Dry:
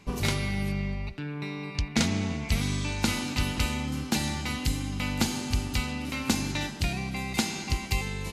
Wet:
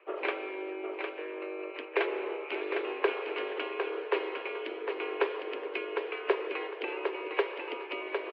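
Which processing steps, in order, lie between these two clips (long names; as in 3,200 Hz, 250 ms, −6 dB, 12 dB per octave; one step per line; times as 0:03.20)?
repeating echo 756 ms, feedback 27%, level −5.5 dB
harmonic and percussive parts rebalanced percussive +9 dB
single-sideband voice off tune +180 Hz 190–2,500 Hz
level −6.5 dB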